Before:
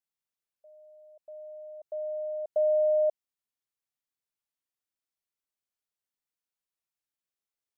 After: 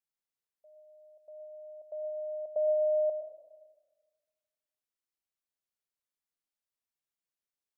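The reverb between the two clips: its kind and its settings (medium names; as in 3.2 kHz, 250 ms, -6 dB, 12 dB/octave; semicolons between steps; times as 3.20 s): algorithmic reverb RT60 1.4 s, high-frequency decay 0.3×, pre-delay 70 ms, DRR 8.5 dB; trim -4 dB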